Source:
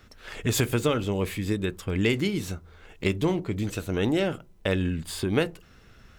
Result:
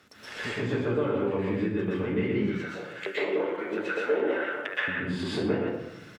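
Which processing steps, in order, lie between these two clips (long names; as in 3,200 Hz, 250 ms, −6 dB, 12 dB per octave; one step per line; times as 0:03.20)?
single-tap delay 121 ms −5 dB
treble cut that deepens with the level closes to 1,500 Hz, closed at −24.5 dBFS
surface crackle 90 per second −53 dBFS
0:02.38–0:04.88: auto-filter high-pass square 2.2 Hz 490–1,500 Hz
downward compressor, threshold −29 dBFS, peak gain reduction 11 dB
Bessel high-pass filter 220 Hz, order 2
convolution reverb RT60 0.75 s, pre-delay 114 ms, DRR −8 dB
level −2 dB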